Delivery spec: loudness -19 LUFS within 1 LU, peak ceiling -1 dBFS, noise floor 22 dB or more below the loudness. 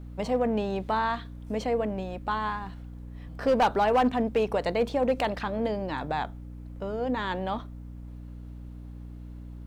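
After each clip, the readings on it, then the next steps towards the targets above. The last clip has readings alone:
clipped 0.4%; flat tops at -17.0 dBFS; hum 60 Hz; harmonics up to 300 Hz; hum level -39 dBFS; loudness -28.5 LUFS; peak -17.0 dBFS; loudness target -19.0 LUFS
-> clip repair -17 dBFS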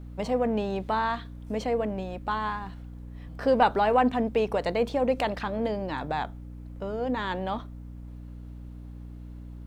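clipped 0.0%; hum 60 Hz; harmonics up to 300 Hz; hum level -39 dBFS
-> de-hum 60 Hz, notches 5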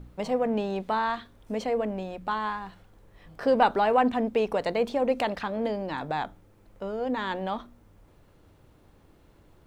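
hum none; loudness -28.0 LUFS; peak -8.5 dBFS; loudness target -19.0 LUFS
-> gain +9 dB; limiter -1 dBFS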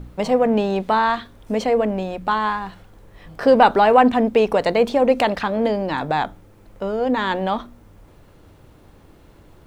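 loudness -19.0 LUFS; peak -1.0 dBFS; noise floor -49 dBFS

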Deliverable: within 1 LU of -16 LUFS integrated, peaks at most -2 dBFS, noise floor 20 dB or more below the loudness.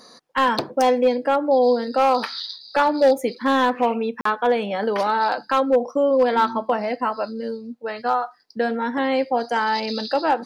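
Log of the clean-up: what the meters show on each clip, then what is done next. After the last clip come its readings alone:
clipped 0.6%; flat tops at -10.5 dBFS; dropouts 1; longest dropout 44 ms; loudness -21.0 LUFS; peak -10.5 dBFS; loudness target -16.0 LUFS
-> clip repair -10.5 dBFS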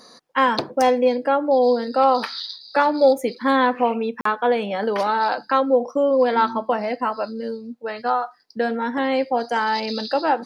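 clipped 0.0%; dropouts 1; longest dropout 44 ms
-> interpolate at 4.21, 44 ms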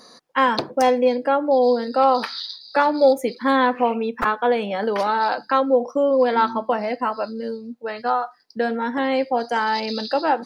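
dropouts 0; loudness -21.0 LUFS; peak -4.5 dBFS; loudness target -16.0 LUFS
-> gain +5 dB; limiter -2 dBFS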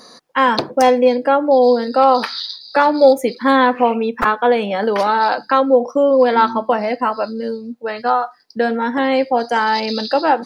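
loudness -16.0 LUFS; peak -2.0 dBFS; noise floor -44 dBFS

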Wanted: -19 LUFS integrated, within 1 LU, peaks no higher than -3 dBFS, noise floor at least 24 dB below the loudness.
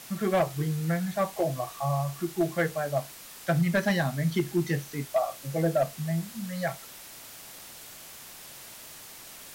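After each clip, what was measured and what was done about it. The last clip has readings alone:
clipped 0.3%; flat tops at -17.5 dBFS; noise floor -46 dBFS; noise floor target -53 dBFS; loudness -29.0 LUFS; peak -17.5 dBFS; loudness target -19.0 LUFS
-> clip repair -17.5 dBFS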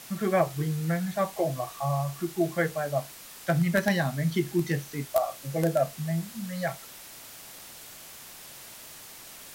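clipped 0.0%; noise floor -46 dBFS; noise floor target -53 dBFS
-> denoiser 7 dB, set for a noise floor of -46 dBFS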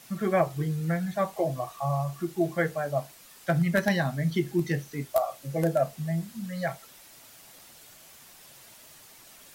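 noise floor -52 dBFS; noise floor target -53 dBFS
-> denoiser 6 dB, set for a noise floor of -52 dBFS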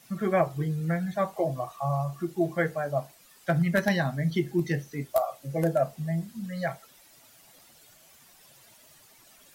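noise floor -57 dBFS; loudness -29.0 LUFS; peak -9.5 dBFS; loudness target -19.0 LUFS
-> gain +10 dB; limiter -3 dBFS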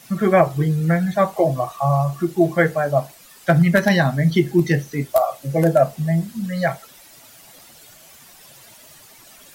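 loudness -19.0 LUFS; peak -3.0 dBFS; noise floor -47 dBFS

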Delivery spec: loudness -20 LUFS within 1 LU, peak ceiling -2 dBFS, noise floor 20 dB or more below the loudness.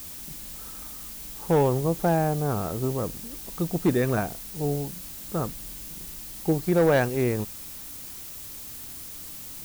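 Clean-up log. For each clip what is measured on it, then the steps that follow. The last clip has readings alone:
clipped 0.4%; flat tops at -14.5 dBFS; noise floor -40 dBFS; noise floor target -48 dBFS; loudness -28.0 LUFS; peak -14.5 dBFS; loudness target -20.0 LUFS
-> clip repair -14.5 dBFS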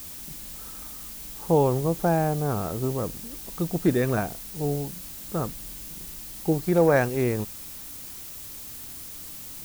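clipped 0.0%; noise floor -40 dBFS; noise floor target -48 dBFS
-> noise print and reduce 8 dB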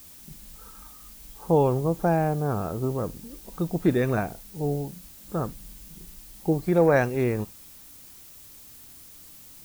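noise floor -48 dBFS; loudness -25.5 LUFS; peak -9.5 dBFS; loudness target -20.0 LUFS
-> gain +5.5 dB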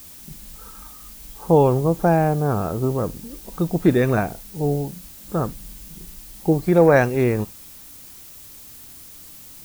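loudness -20.0 LUFS; peak -4.0 dBFS; noise floor -42 dBFS

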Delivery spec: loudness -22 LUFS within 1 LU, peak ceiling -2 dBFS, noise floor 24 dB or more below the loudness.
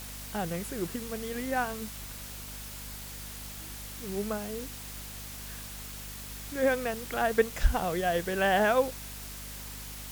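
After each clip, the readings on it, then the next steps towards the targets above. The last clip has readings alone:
hum 50 Hz; harmonics up to 250 Hz; hum level -44 dBFS; noise floor -42 dBFS; noise floor target -57 dBFS; loudness -32.5 LUFS; peak -10.5 dBFS; loudness target -22.0 LUFS
-> de-hum 50 Hz, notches 5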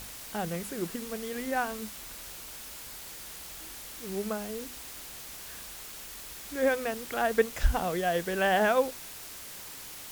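hum none; noise floor -44 dBFS; noise floor target -57 dBFS
-> denoiser 13 dB, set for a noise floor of -44 dBFS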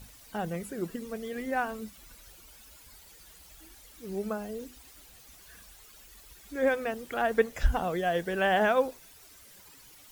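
noise floor -54 dBFS; noise floor target -55 dBFS
-> denoiser 6 dB, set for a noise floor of -54 dBFS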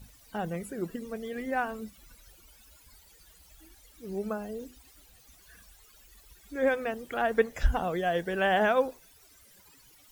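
noise floor -58 dBFS; loudness -30.5 LUFS; peak -11.5 dBFS; loudness target -22.0 LUFS
-> gain +8.5 dB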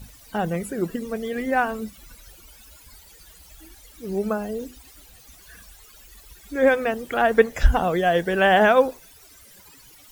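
loudness -22.0 LUFS; peak -3.0 dBFS; noise floor -50 dBFS

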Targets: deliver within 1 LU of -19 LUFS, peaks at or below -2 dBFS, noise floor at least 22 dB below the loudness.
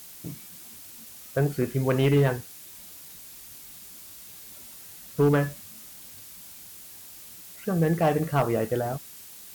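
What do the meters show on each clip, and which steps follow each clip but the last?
clipped 0.4%; flat tops at -15.0 dBFS; noise floor -46 dBFS; noise floor target -48 dBFS; loudness -25.5 LUFS; peak -15.0 dBFS; loudness target -19.0 LUFS
-> clip repair -15 dBFS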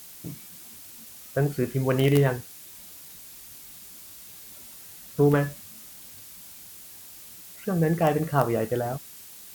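clipped 0.0%; noise floor -46 dBFS; noise floor target -47 dBFS
-> denoiser 6 dB, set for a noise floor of -46 dBFS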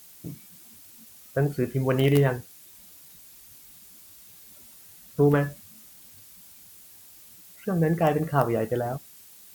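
noise floor -50 dBFS; loudness -25.0 LUFS; peak -6.0 dBFS; loudness target -19.0 LUFS
-> gain +6 dB; limiter -2 dBFS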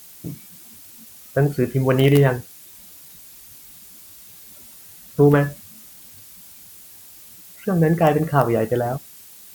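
loudness -19.5 LUFS; peak -2.0 dBFS; noise floor -44 dBFS

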